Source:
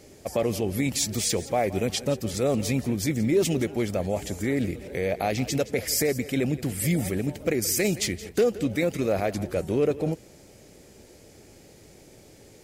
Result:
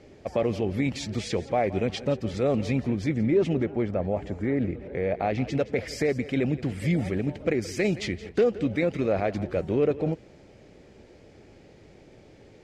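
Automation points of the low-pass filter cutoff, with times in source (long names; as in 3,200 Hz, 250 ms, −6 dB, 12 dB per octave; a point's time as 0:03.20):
0:02.84 3,100 Hz
0:03.74 1,700 Hz
0:04.87 1,700 Hz
0:05.91 3,200 Hz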